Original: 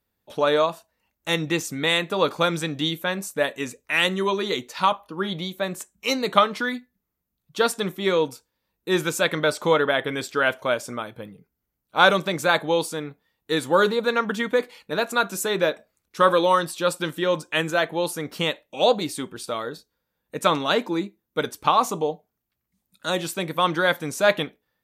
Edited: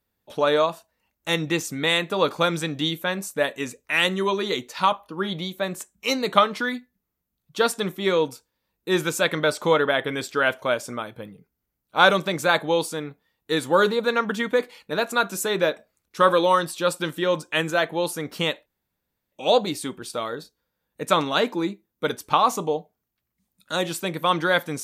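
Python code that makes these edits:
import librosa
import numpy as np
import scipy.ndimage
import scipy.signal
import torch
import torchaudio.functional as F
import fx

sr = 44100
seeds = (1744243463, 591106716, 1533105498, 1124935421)

y = fx.edit(x, sr, fx.insert_room_tone(at_s=18.66, length_s=0.66), tone=tone)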